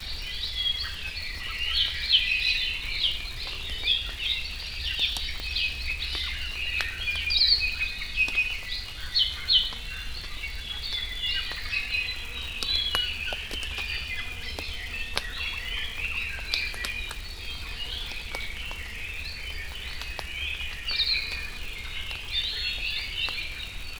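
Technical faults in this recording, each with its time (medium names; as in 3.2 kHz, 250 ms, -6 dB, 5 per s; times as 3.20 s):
crackle 160 per s -33 dBFS
5.40 s: pop -19 dBFS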